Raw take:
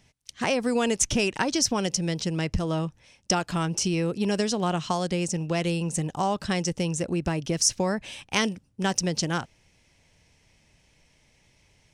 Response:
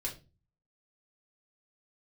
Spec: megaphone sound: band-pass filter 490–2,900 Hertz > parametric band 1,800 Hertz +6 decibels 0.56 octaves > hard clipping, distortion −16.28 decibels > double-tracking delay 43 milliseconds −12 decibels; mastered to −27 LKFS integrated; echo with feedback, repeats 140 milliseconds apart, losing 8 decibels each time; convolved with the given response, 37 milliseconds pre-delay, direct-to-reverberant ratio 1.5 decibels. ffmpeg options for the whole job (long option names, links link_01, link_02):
-filter_complex "[0:a]aecho=1:1:140|280|420|560|700:0.398|0.159|0.0637|0.0255|0.0102,asplit=2[link_01][link_02];[1:a]atrim=start_sample=2205,adelay=37[link_03];[link_02][link_03]afir=irnorm=-1:irlink=0,volume=-2.5dB[link_04];[link_01][link_04]amix=inputs=2:normalize=0,highpass=490,lowpass=2900,equalizer=frequency=1800:width_type=o:width=0.56:gain=6,asoftclip=type=hard:threshold=-19.5dB,asplit=2[link_05][link_06];[link_06]adelay=43,volume=-12dB[link_07];[link_05][link_07]amix=inputs=2:normalize=0,volume=1dB"